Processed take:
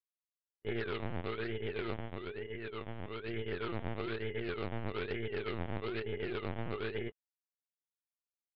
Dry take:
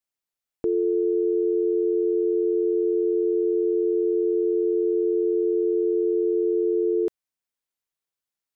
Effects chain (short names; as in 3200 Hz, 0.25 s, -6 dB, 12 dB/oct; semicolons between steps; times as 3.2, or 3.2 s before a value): Bessel high-pass 220 Hz, order 4; expander -14 dBFS; reverb removal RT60 0.9 s; 1.98–3.27 tilt +3.5 dB/oct; chorus 2.7 Hz, delay 19.5 ms, depth 3 ms; decimation with a swept rate 25×, swing 60% 1.1 Hz; LPC vocoder at 8 kHz pitch kept; Doppler distortion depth 0.41 ms; gain +3.5 dB